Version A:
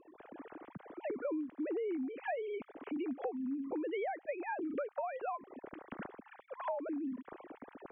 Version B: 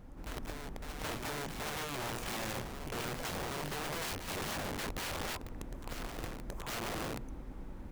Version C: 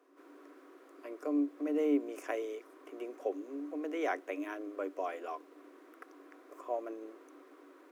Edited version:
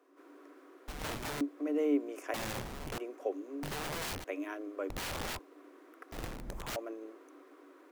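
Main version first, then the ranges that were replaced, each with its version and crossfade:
C
0:00.88–0:01.41: punch in from B
0:02.34–0:02.98: punch in from B
0:03.63–0:04.24: punch in from B
0:04.90–0:05.39: punch in from B
0:06.12–0:06.76: punch in from B
not used: A

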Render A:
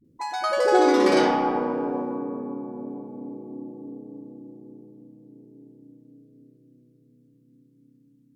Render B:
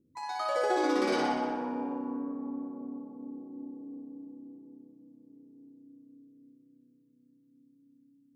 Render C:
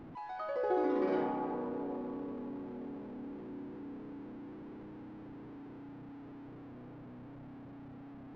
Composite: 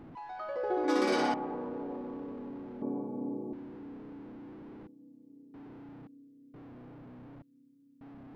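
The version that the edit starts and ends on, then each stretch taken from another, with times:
C
0:00.88–0:01.34: punch in from B
0:02.82–0:03.53: punch in from A
0:04.87–0:05.54: punch in from B
0:06.07–0:06.54: punch in from B
0:07.42–0:08.01: punch in from B

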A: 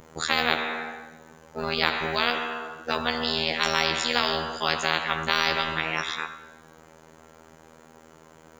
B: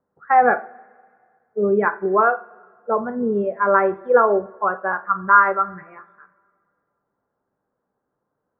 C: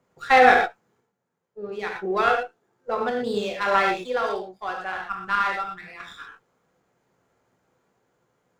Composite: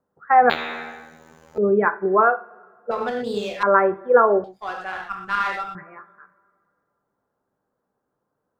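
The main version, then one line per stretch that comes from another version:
B
0:00.50–0:01.58: punch in from A
0:02.91–0:03.63: punch in from C
0:04.44–0:05.75: punch in from C

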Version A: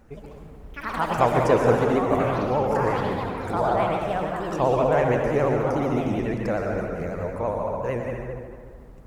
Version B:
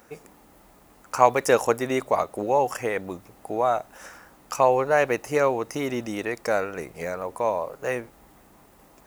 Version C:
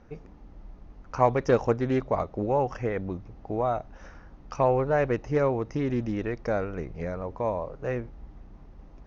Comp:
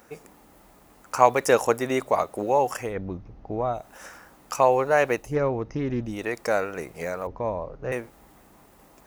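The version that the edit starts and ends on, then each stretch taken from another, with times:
B
0:02.88–0:03.79: punch in from C, crossfade 0.16 s
0:05.25–0:06.15: punch in from C, crossfade 0.24 s
0:07.27–0:07.92: punch in from C
not used: A

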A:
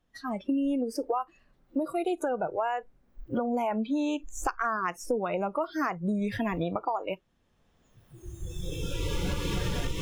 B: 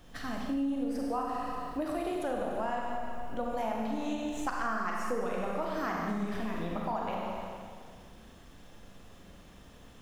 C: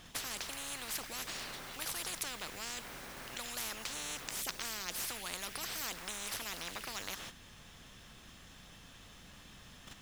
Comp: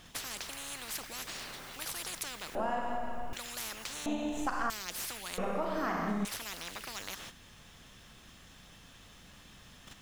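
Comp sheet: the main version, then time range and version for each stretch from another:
C
0:02.55–0:03.33: punch in from B
0:04.06–0:04.70: punch in from B
0:05.38–0:06.25: punch in from B
not used: A

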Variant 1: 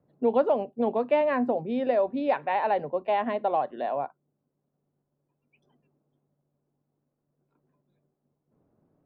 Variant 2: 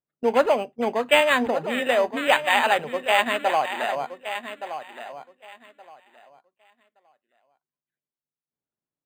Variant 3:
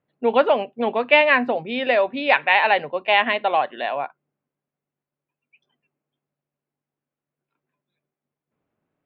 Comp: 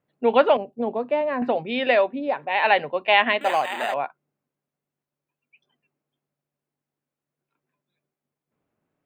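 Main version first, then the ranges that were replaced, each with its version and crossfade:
3
0:00.57–0:01.42: punch in from 1
0:02.12–0:02.56: punch in from 1, crossfade 0.24 s
0:03.41–0:03.94: punch in from 2

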